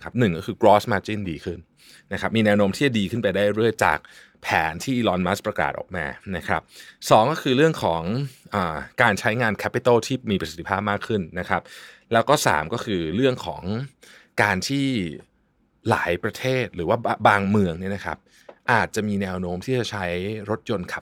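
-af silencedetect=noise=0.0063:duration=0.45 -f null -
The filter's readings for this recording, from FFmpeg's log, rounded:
silence_start: 15.23
silence_end: 15.85 | silence_duration: 0.63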